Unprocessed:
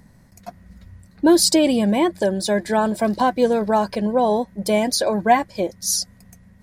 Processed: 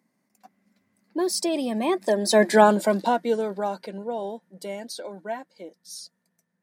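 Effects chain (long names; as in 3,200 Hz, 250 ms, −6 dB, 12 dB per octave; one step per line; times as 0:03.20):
source passing by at 0:02.53, 22 m/s, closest 4.8 metres
high-pass filter 210 Hz 24 dB per octave
level +5 dB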